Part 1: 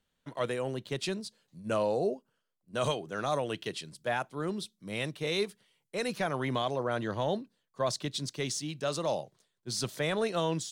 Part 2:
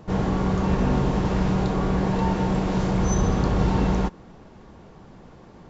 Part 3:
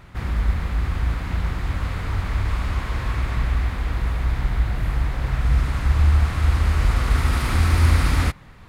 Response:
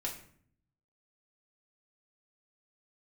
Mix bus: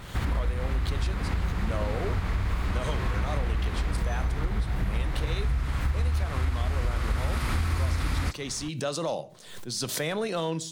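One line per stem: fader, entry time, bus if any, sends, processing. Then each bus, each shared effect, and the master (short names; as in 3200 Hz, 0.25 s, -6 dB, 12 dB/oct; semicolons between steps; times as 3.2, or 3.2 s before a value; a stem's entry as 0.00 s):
+0.5 dB, 0.00 s, send -12 dB, hard clip -21 dBFS, distortion -33 dB; backwards sustainer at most 61 dB/s
-11.5 dB, 1.00 s, no send, dry
+3.0 dB, 0.00 s, no send, dry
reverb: on, RT60 0.55 s, pre-delay 4 ms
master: compressor 6:1, threshold -24 dBFS, peak gain reduction 15 dB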